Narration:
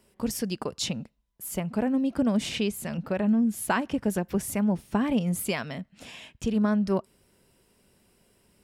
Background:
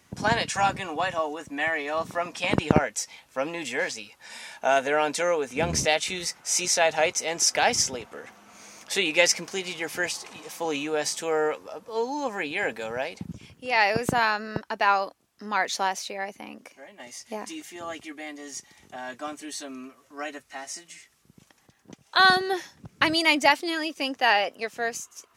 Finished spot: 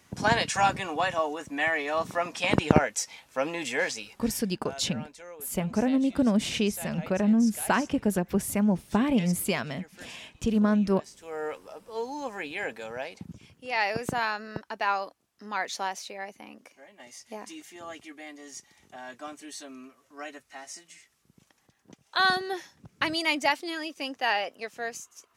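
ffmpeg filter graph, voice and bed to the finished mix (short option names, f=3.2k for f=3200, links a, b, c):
-filter_complex "[0:a]adelay=4000,volume=1dB[a];[1:a]volume=15dB,afade=t=out:st=4.14:d=0.28:silence=0.0944061,afade=t=in:st=11.18:d=0.4:silence=0.177828[b];[a][b]amix=inputs=2:normalize=0"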